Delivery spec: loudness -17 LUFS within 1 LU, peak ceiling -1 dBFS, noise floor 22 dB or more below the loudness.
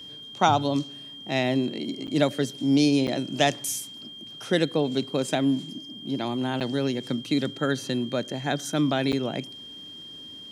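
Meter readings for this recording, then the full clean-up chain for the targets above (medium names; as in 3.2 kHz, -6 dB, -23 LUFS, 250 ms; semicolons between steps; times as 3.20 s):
dropouts 4; longest dropout 8.0 ms; steady tone 3.2 kHz; tone level -40 dBFS; loudness -26.0 LUFS; peak level -6.0 dBFS; loudness target -17.0 LUFS
-> interpolate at 2.07/3.07/6.60/9.12 s, 8 ms; band-stop 3.2 kHz, Q 30; trim +9 dB; peak limiter -1 dBFS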